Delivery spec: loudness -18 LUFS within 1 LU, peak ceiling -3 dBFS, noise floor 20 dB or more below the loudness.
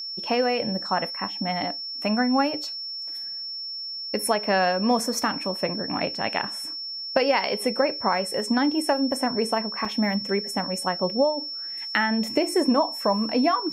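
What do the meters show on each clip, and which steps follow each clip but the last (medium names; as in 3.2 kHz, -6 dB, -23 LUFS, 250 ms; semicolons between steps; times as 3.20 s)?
dropouts 1; longest dropout 3.3 ms; steady tone 5.4 kHz; tone level -31 dBFS; loudness -25.0 LUFS; peak level -6.0 dBFS; loudness target -18.0 LUFS
-> interpolate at 9.85 s, 3.3 ms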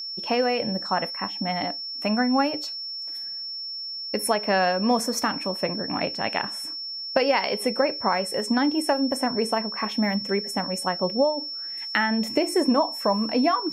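dropouts 0; steady tone 5.4 kHz; tone level -31 dBFS
-> band-stop 5.4 kHz, Q 30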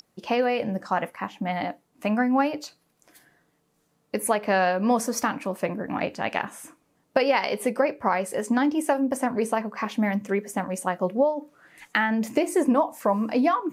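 steady tone not found; loudness -25.5 LUFS; peak level -6.5 dBFS; loudness target -18.0 LUFS
-> trim +7.5 dB; peak limiter -3 dBFS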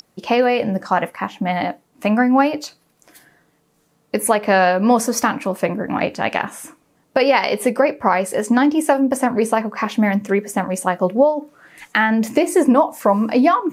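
loudness -18.0 LUFS; peak level -3.0 dBFS; noise floor -62 dBFS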